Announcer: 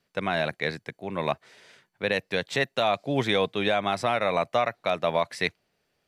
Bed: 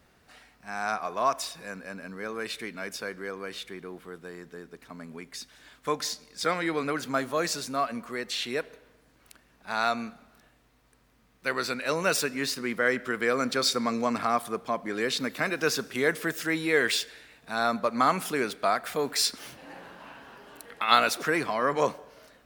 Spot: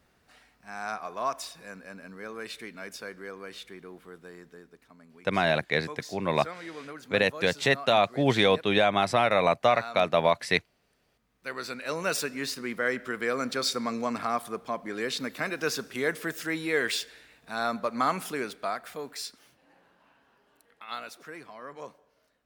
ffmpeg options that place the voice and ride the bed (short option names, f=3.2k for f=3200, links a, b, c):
-filter_complex "[0:a]adelay=5100,volume=2dB[a];[1:a]volume=5dB,afade=t=out:st=4.39:d=0.58:silence=0.398107,afade=t=in:st=11.06:d=1.08:silence=0.334965,afade=t=out:st=18.17:d=1.31:silence=0.199526[b];[a][b]amix=inputs=2:normalize=0"